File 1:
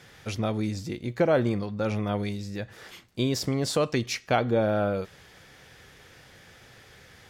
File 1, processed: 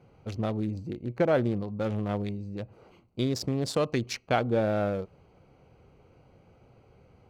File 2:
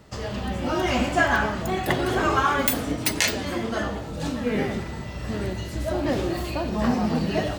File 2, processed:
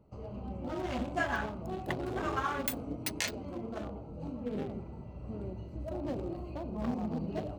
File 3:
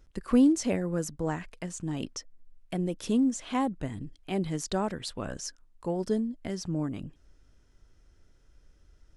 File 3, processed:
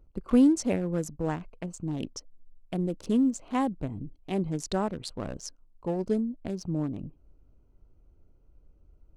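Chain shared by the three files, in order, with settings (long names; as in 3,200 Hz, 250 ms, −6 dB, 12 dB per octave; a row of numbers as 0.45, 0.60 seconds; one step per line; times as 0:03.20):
adaptive Wiener filter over 25 samples
normalise the peak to −12 dBFS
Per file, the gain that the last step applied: −1.5, −11.0, +1.0 decibels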